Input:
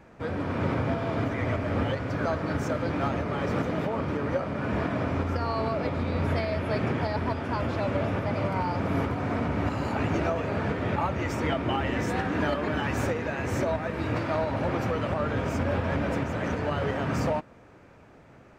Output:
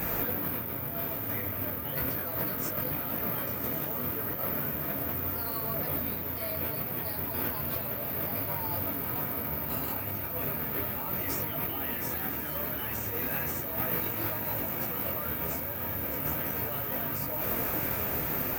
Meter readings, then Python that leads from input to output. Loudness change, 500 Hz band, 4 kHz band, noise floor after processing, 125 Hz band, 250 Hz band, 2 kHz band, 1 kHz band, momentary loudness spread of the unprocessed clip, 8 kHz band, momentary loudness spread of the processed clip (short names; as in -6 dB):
-1.5 dB, -9.0 dB, -3.5 dB, -35 dBFS, -9.5 dB, -9.0 dB, -5.5 dB, -8.0 dB, 2 LU, +4.5 dB, 3 LU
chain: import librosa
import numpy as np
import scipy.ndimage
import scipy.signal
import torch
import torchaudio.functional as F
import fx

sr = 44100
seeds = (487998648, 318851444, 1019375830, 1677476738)

y = fx.high_shelf(x, sr, hz=2600.0, db=9.5)
y = fx.over_compress(y, sr, threshold_db=-41.0, ratio=-1.0)
y = fx.echo_diffused(y, sr, ms=1166, feedback_pct=68, wet_db=-8.0)
y = (np.kron(y[::3], np.eye(3)[0]) * 3)[:len(y)]
y = fx.detune_double(y, sr, cents=12)
y = F.gain(torch.from_numpy(y), 6.5).numpy()